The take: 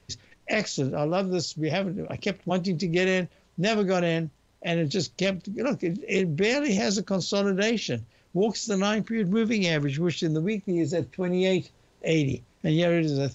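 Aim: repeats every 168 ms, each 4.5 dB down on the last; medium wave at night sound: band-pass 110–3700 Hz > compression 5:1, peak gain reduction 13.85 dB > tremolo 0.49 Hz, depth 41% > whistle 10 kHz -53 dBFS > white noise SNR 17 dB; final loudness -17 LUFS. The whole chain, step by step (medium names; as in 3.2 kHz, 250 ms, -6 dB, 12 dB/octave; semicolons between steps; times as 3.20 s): band-pass 110–3700 Hz; feedback delay 168 ms, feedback 60%, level -4.5 dB; compression 5:1, threshold -33 dBFS; tremolo 0.49 Hz, depth 41%; whistle 10 kHz -53 dBFS; white noise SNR 17 dB; trim +20.5 dB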